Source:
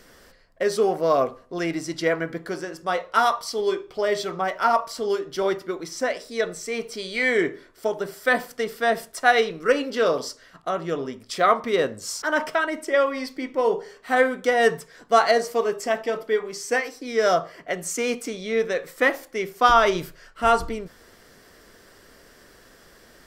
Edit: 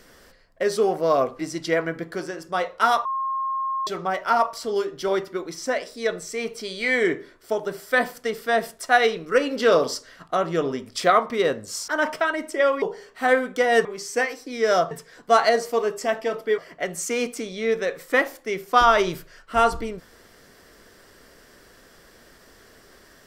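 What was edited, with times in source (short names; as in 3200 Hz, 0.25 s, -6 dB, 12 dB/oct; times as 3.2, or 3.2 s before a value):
1.39–1.73 cut
3.39–4.21 bleep 1070 Hz -23 dBFS
9.85–11.44 gain +3.5 dB
13.16–13.7 cut
16.4–17.46 move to 14.73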